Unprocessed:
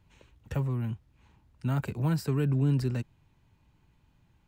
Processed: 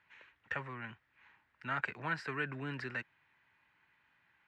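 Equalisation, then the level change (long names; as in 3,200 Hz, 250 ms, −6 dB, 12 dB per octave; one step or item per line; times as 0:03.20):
resonant band-pass 1,800 Hz, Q 3.1
high-frequency loss of the air 66 metres
+12.5 dB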